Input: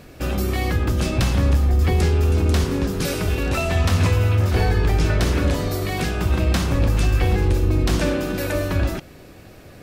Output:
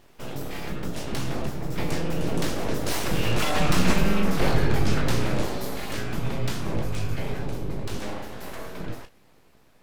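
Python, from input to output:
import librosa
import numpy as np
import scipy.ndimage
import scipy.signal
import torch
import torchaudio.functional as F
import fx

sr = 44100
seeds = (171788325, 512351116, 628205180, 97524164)

y = fx.doppler_pass(x, sr, speed_mps=18, closest_m=21.0, pass_at_s=3.77)
y = fx.room_early_taps(y, sr, ms=(19, 34), db=(-8.0, -10.0))
y = np.abs(y)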